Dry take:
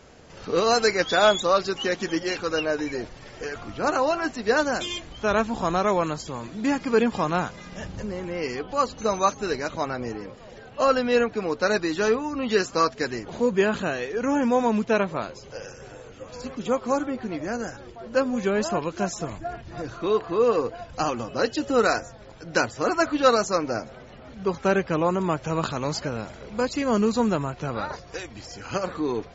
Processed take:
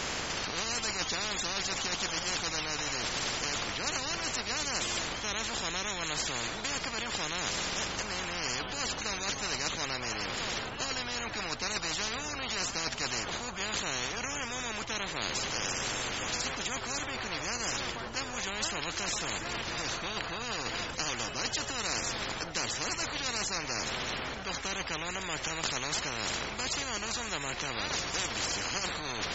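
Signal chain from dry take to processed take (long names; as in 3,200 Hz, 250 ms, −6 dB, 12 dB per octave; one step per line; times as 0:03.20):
low-shelf EQ 490 Hz +11.5 dB
reversed playback
downward compressor 4 to 1, threshold −30 dBFS, peak gain reduction 18 dB
reversed playback
every bin compressed towards the loudest bin 10 to 1
level +2 dB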